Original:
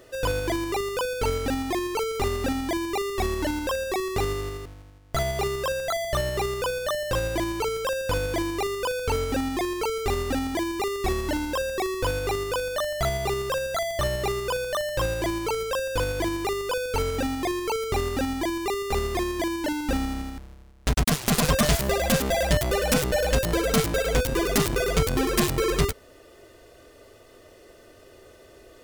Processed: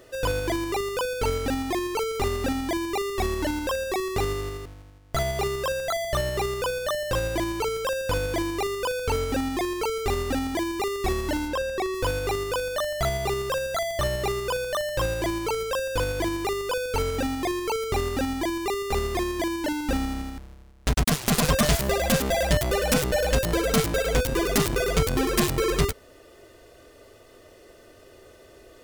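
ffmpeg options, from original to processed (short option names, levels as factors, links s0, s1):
-filter_complex "[0:a]asplit=3[s0][s1][s2];[s0]afade=t=out:st=11.47:d=0.02[s3];[s1]highshelf=f=6600:g=-8.5,afade=t=in:st=11.47:d=0.02,afade=t=out:st=11.93:d=0.02[s4];[s2]afade=t=in:st=11.93:d=0.02[s5];[s3][s4][s5]amix=inputs=3:normalize=0"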